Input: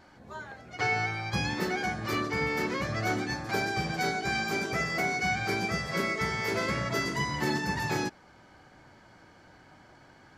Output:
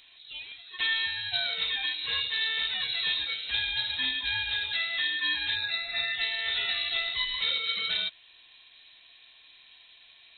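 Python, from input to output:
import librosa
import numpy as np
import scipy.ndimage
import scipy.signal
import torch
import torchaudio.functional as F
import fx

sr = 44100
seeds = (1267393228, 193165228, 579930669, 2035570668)

y = fx.spec_erase(x, sr, start_s=5.56, length_s=0.58, low_hz=500.0, high_hz=1200.0)
y = fx.freq_invert(y, sr, carrier_hz=4000)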